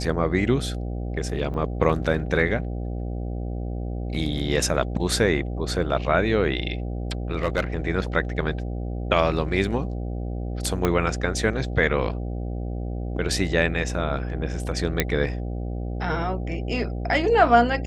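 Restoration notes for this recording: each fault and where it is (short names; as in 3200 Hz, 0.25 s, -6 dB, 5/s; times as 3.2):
buzz 60 Hz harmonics 13 -29 dBFS
1.54 gap 2.9 ms
7.31–7.6 clipped -16 dBFS
10.85 pop -8 dBFS
15 pop -4 dBFS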